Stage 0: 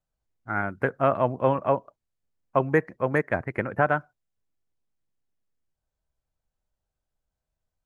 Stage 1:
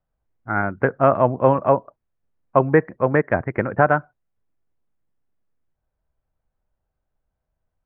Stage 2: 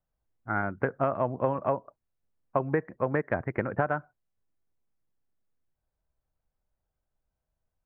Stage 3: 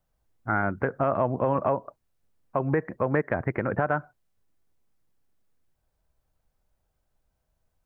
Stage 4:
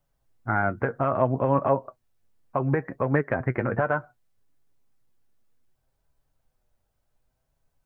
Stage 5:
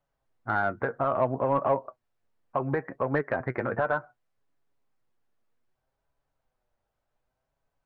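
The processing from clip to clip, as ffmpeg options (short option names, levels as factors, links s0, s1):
-af "lowpass=1800,volume=2.11"
-af "acompressor=threshold=0.141:ratio=6,volume=0.531"
-af "alimiter=limit=0.0944:level=0:latency=1:release=141,volume=2.51"
-af "flanger=delay=7.1:depth=1.6:regen=50:speed=0.65:shape=sinusoidal,volume=1.78"
-filter_complex "[0:a]asplit=2[s0][s1];[s1]highpass=f=720:p=1,volume=3.55,asoftclip=type=tanh:threshold=0.398[s2];[s0][s2]amix=inputs=2:normalize=0,lowpass=f=1400:p=1,volume=0.501,volume=0.668"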